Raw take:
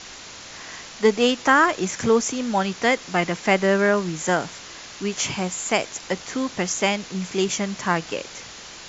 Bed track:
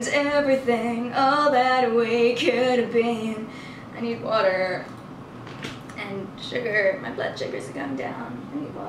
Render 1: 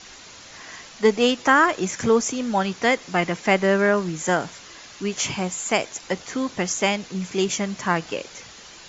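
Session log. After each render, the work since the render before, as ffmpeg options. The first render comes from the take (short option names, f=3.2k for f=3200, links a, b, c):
-af "afftdn=nr=6:nf=-40"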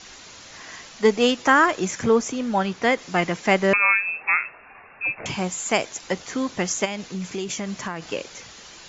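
-filter_complex "[0:a]asettb=1/sr,asplit=3[a][b][c];[a]atrim=end=1.994[d];[b]atrim=start=1.99:end=2.98,asetpts=PTS-STARTPTS,afade=t=in:d=0.004:c=qsin,afade=t=out:st=0.986:d=0.004:c=qsin,highshelf=f=4.9k:g=-8[e];[c]atrim=start=2.976[f];[d][e]acrossfade=d=0.004:c1=hsin:c2=qsin[g];[g][f]acrossfade=d=0.004:c1=qsin:c2=hsin,asettb=1/sr,asplit=3[h][i][j];[h]atrim=end=3.734[k];[i]atrim=start=3.73:end=5.26,asetpts=PTS-STARTPTS,afade=t=in:d=0.004:c=qsin,afade=t=out:st=1.526:d=0.004:c=qsin,lowpass=f=2.4k:t=q:w=0.5098,lowpass=f=2.4k:t=q:w=0.6013,lowpass=f=2.4k:t=q:w=0.9,lowpass=f=2.4k:t=q:w=2.563,afreqshift=-2800[l];[j]atrim=start=5.256[m];[k][l]acrossfade=d=0.004:c1=hsin:c2=qsin[n];[n][m]acrossfade=d=0.004:c1=qsin:c2=hsin,asplit=3[o][p][q];[o]afade=t=out:st=6.84:d=0.02[r];[p]acompressor=threshold=-25dB:ratio=6:attack=3.2:release=140:knee=1:detection=peak,afade=t=in:st=6.84:d=0.02,afade=t=out:st=8.1:d=0.02[s];[q]afade=t=in:st=8.1:d=0.02[t];[r][s][t]amix=inputs=3:normalize=0"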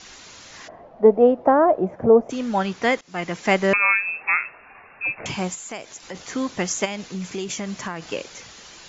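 -filter_complex "[0:a]asplit=3[a][b][c];[a]afade=t=out:st=0.67:d=0.02[d];[b]lowpass=f=660:t=q:w=3.7,afade=t=in:st=0.67:d=0.02,afade=t=out:st=2.29:d=0.02[e];[c]afade=t=in:st=2.29:d=0.02[f];[d][e][f]amix=inputs=3:normalize=0,asplit=3[g][h][i];[g]afade=t=out:st=5.54:d=0.02[j];[h]acompressor=threshold=-39dB:ratio=2:attack=3.2:release=140:knee=1:detection=peak,afade=t=in:st=5.54:d=0.02,afade=t=out:st=6.14:d=0.02[k];[i]afade=t=in:st=6.14:d=0.02[l];[j][k][l]amix=inputs=3:normalize=0,asplit=2[m][n];[m]atrim=end=3.01,asetpts=PTS-STARTPTS,afade=t=out:st=3.006:d=0.004:c=hsin:silence=0.0891251[o];[n]atrim=start=3.01,asetpts=PTS-STARTPTS,afade=t=in:d=0.43:silence=0.0891251[p];[o][p]concat=n=2:v=0:a=1"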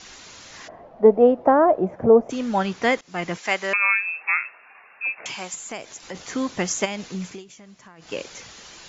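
-filter_complex "[0:a]asettb=1/sr,asplit=3[a][b][c];[a]atrim=end=3.384[d];[b]atrim=start=3.38:end=5.54,asetpts=PTS-STARTPTS,afade=t=in:d=0.004:c=qsin,afade=t=out:st=2.156:d=0.004:c=qsin,highpass=f=1.2k:p=1[e];[c]atrim=start=5.536[f];[d][e]acrossfade=d=0.004:c1=hsin:c2=qsin[g];[g][f]acrossfade=d=0.004:c1=qsin:c2=hsin,asplit=3[h][i][j];[h]atrim=end=7.44,asetpts=PTS-STARTPTS,afade=t=out:st=7.21:d=0.23:silence=0.141254[k];[i]atrim=start=7.44:end=7.97,asetpts=PTS-STARTPTS,volume=-17dB[l];[j]atrim=start=7.97,asetpts=PTS-STARTPTS,afade=t=in:d=0.23:silence=0.141254[m];[k][l][m]concat=n=3:v=0:a=1"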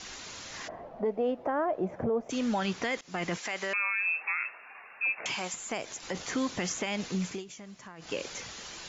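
-filter_complex "[0:a]acrossover=split=1800|3600[a][b][c];[a]acompressor=threshold=-26dB:ratio=4[d];[b]acompressor=threshold=-26dB:ratio=4[e];[c]acompressor=threshold=-38dB:ratio=4[f];[d][e][f]amix=inputs=3:normalize=0,alimiter=limit=-21.5dB:level=0:latency=1:release=24"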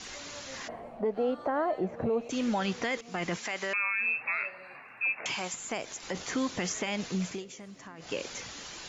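-filter_complex "[1:a]volume=-28dB[a];[0:a][a]amix=inputs=2:normalize=0"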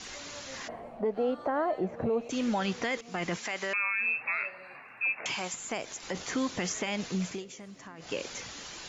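-af anull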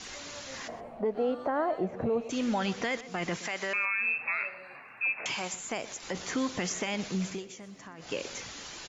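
-filter_complex "[0:a]asplit=2[a][b];[b]adelay=122.4,volume=-16dB,highshelf=f=4k:g=-2.76[c];[a][c]amix=inputs=2:normalize=0"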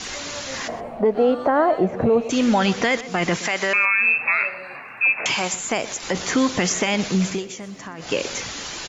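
-af "volume=11.5dB"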